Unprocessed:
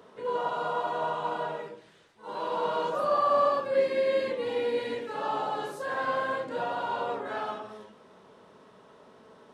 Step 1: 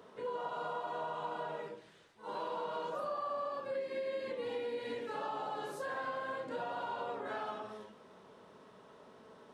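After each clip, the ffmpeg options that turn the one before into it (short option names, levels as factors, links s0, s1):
-af "acompressor=threshold=0.0224:ratio=6,volume=0.708"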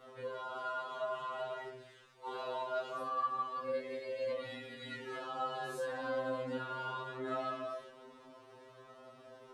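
-af "flanger=delay=17:depth=7.1:speed=0.22,afftfilt=real='re*2.45*eq(mod(b,6),0)':imag='im*2.45*eq(mod(b,6),0)':win_size=2048:overlap=0.75,volume=2.24"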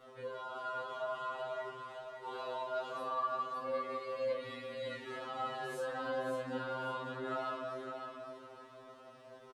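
-af "aecho=1:1:560|1120|1680|2240:0.501|0.145|0.0421|0.0122,volume=0.891"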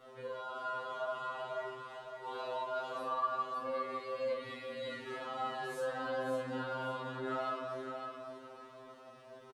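-filter_complex "[0:a]asplit=2[s0][s1];[s1]adelay=46,volume=0.447[s2];[s0][s2]amix=inputs=2:normalize=0"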